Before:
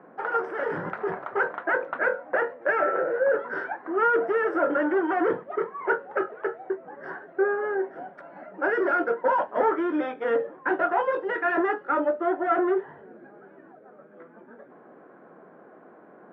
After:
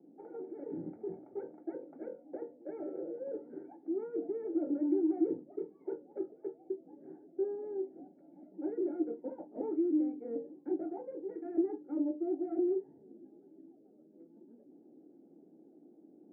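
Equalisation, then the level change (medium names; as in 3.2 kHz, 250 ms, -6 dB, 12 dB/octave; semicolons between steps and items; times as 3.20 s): cascade formant filter u; hum notches 50/100/150/200/250/300 Hz; static phaser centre 2.4 kHz, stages 4; +2.5 dB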